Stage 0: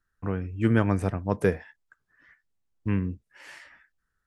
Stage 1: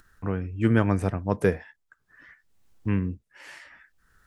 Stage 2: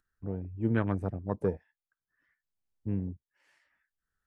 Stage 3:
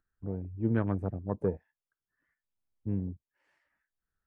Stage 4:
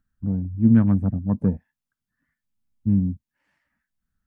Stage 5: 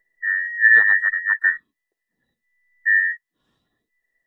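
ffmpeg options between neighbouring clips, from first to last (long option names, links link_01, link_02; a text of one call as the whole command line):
ffmpeg -i in.wav -af "acompressor=mode=upward:threshold=-45dB:ratio=2.5,volume=1dB" out.wav
ffmpeg -i in.wav -af "afwtdn=0.0355,volume=-7dB" out.wav
ffmpeg -i in.wav -af "highshelf=frequency=2000:gain=-11.5" out.wav
ffmpeg -i in.wav -af "lowshelf=frequency=300:width_type=q:width=3:gain=7.5,volume=2.5dB" out.wav
ffmpeg -i in.wav -af "afftfilt=real='real(if(between(b,1,1012),(2*floor((b-1)/92)+1)*92-b,b),0)':imag='imag(if(between(b,1,1012),(2*floor((b-1)/92)+1)*92-b,b),0)*if(between(b,1,1012),-1,1)':win_size=2048:overlap=0.75,volume=2dB" out.wav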